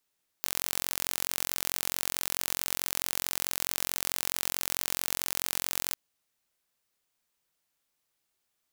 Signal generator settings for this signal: pulse train 44.6 per s, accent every 0, -3 dBFS 5.50 s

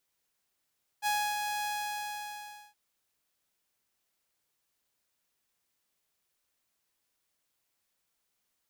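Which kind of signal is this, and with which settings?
ADSR saw 834 Hz, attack 45 ms, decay 292 ms, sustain -5 dB, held 0.63 s, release 1090 ms -24 dBFS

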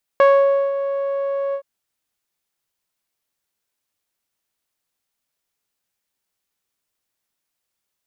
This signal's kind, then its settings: synth note saw C#5 12 dB/octave, low-pass 710 Hz, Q 1, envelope 1 oct, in 0.25 s, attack 1.2 ms, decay 0.52 s, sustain -11 dB, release 0.08 s, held 1.34 s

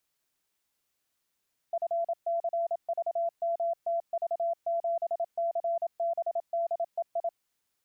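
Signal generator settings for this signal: Morse "FCVMTV7CBDEI" 27 wpm 677 Hz -26 dBFS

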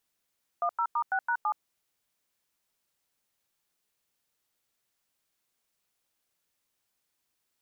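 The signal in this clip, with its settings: DTMF "10*6#7", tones 72 ms, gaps 94 ms, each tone -27.5 dBFS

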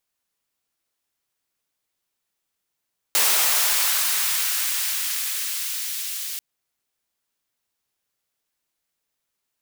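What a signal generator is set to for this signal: swept filtered noise white, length 3.24 s highpass, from 440 Hz, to 2.6 kHz, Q 0.75, linear, gain ramp -12 dB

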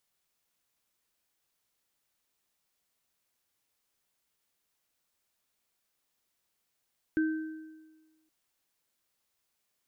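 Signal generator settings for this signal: sine partials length 1.12 s, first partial 315 Hz, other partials 1.55 kHz, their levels -10.5 dB, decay 1.34 s, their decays 1.06 s, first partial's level -23 dB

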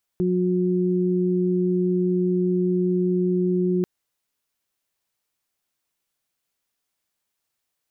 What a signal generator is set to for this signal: steady additive tone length 3.64 s, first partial 181 Hz, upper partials -0.5 dB, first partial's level -21 dB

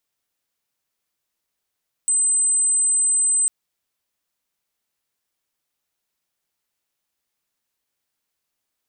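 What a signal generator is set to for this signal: tone sine 8.12 kHz -15.5 dBFS 1.40 s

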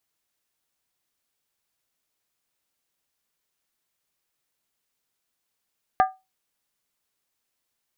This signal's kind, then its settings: skin hit, lowest mode 757 Hz, decay 0.23 s, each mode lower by 6.5 dB, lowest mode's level -11.5 dB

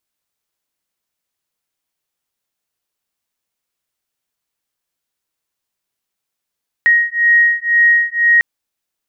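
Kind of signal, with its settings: beating tones 1.88 kHz, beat 2 Hz, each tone -12.5 dBFS 1.55 s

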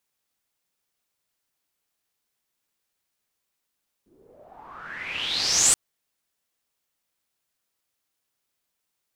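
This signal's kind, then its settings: swept filtered noise white, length 1.68 s lowpass, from 300 Hz, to 8.5 kHz, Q 7.2, exponential, gain ramp +29.5 dB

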